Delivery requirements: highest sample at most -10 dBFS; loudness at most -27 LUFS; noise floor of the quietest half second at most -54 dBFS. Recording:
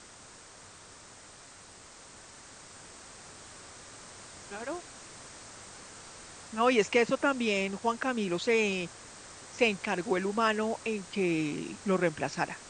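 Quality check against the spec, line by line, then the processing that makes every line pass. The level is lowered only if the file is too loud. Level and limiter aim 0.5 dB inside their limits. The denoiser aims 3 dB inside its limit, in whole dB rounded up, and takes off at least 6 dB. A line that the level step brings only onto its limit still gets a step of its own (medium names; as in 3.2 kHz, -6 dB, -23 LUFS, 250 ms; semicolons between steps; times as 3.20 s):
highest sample -12.0 dBFS: pass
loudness -30.0 LUFS: pass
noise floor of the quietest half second -52 dBFS: fail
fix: noise reduction 6 dB, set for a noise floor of -52 dBFS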